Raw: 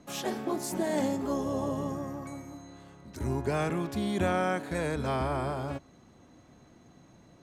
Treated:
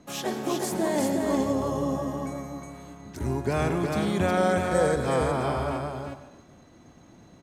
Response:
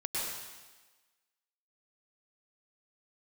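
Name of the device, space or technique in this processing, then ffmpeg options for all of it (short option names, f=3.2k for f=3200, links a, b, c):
keyed gated reverb: -filter_complex "[0:a]asettb=1/sr,asplit=3[a][b][c];[a]atrim=end=4.374[d];[b]atrim=start=4.37:end=4.99,asetpts=PTS-STARTPTS,afade=t=in:d=0.004:c=qsin,afade=t=out:st=0.616:d=0.004:c=qsin,equalizer=f=500:t=o:w=0.33:g=9,equalizer=f=2.5k:t=o:w=0.33:g=-10,equalizer=f=5k:t=o:w=0.33:g=4,equalizer=f=8k:t=o:w=0.33:g=7[e];[c]atrim=start=4.986[f];[d][e]acrossfade=d=0.004:c1=hsin:c2=qsin[g];[g][f]acrossfade=d=0.004:c1=qsin:c2=hsin,aecho=1:1:362:0.668,asplit=3[h][i][j];[1:a]atrim=start_sample=2205[k];[i][k]afir=irnorm=-1:irlink=0[l];[j]apad=whole_len=343464[m];[l][m]sidechaingate=range=-33dB:threshold=-54dB:ratio=16:detection=peak,volume=-14dB[n];[h][n]amix=inputs=2:normalize=0,volume=1.5dB"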